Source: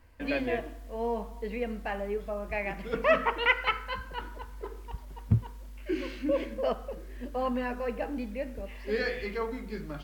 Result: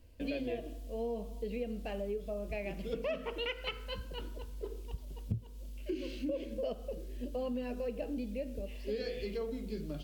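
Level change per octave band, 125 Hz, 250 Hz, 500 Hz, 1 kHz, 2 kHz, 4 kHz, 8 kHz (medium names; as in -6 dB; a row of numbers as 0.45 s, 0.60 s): -8.0 dB, -4.5 dB, -6.0 dB, -15.5 dB, -14.5 dB, -5.0 dB, no reading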